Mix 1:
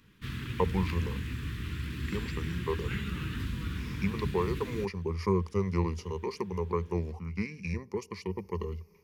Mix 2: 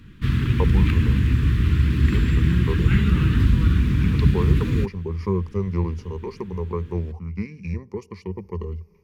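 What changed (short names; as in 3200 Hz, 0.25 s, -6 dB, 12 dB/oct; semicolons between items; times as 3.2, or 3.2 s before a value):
background +11.0 dB; master: add tilt -2 dB/oct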